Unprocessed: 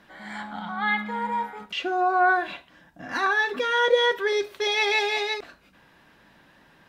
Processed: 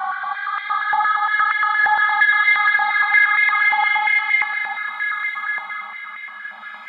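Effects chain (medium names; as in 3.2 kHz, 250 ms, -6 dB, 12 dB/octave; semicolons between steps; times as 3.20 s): tape start-up on the opening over 0.81 s; Paulstretch 25×, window 0.05 s, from 0.79 s; step-sequenced high-pass 8.6 Hz 900–2000 Hz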